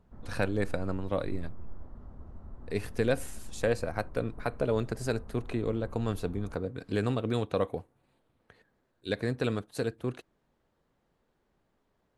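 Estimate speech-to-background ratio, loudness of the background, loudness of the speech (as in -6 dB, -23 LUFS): 17.0 dB, -50.0 LUFS, -33.0 LUFS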